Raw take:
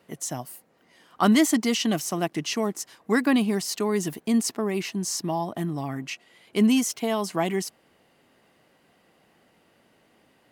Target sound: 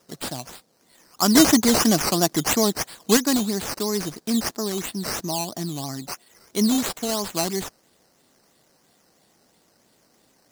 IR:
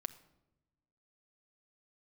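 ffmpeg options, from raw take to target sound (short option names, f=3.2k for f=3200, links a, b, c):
-filter_complex "[0:a]acrusher=samples=10:mix=1:aa=0.000001:lfo=1:lforange=6:lforate=3,highshelf=f=3.6k:t=q:w=1.5:g=8.5,asettb=1/sr,asplit=3[a][b][c];[a]atrim=end=1.354[d];[b]atrim=start=1.35:end=3.17,asetpts=PTS-STARTPTS,afade=t=in:d=0.004:c=qsin,afade=t=out:st=1.816:d=0.004:c=qsin,acontrast=66[e];[c]atrim=start=3.166[f];[d][e]acrossfade=d=0.004:c1=hsin:c2=qsin[g];[g][f]acrossfade=d=0.004:c1=qsin:c2=hsin,volume=-1dB"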